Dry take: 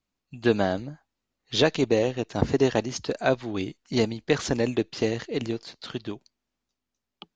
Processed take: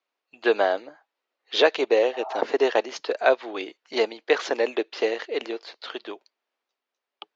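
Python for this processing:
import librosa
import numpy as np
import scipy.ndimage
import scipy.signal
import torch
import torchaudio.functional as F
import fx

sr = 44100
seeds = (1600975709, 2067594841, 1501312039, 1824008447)

y = scipy.signal.sosfilt(scipy.signal.butter(2, 3500.0, 'lowpass', fs=sr, output='sos'), x)
y = fx.spec_repair(y, sr, seeds[0], start_s=2.15, length_s=0.23, low_hz=630.0, high_hz=1400.0, source='both')
y = scipy.signal.sosfilt(scipy.signal.butter(4, 420.0, 'highpass', fs=sr, output='sos'), y)
y = y * librosa.db_to_amplitude(5.0)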